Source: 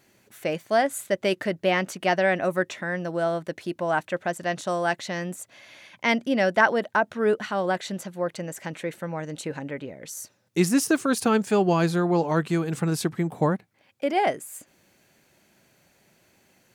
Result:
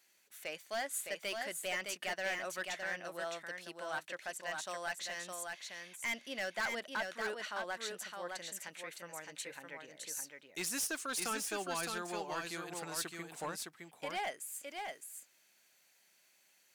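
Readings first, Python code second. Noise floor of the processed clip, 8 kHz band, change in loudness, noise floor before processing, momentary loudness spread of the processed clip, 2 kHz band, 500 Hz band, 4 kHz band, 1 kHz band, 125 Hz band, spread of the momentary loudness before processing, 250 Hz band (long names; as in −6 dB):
−70 dBFS, −4.0 dB, −14.5 dB, −64 dBFS, 9 LU, −10.5 dB, −18.0 dB, −6.5 dB, −15.0 dB, −27.0 dB, 12 LU, −23.5 dB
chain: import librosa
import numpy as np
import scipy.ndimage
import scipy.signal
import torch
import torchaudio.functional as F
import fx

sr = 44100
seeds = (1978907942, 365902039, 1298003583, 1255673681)

p1 = fx.lowpass(x, sr, hz=2800.0, slope=6)
p2 = np.diff(p1, prepend=0.0)
p3 = np.clip(10.0 ** (36.0 / 20.0) * p2, -1.0, 1.0) / 10.0 ** (36.0 / 20.0)
p4 = p3 + fx.echo_single(p3, sr, ms=612, db=-4.5, dry=0)
y = F.gain(torch.from_numpy(p4), 4.0).numpy()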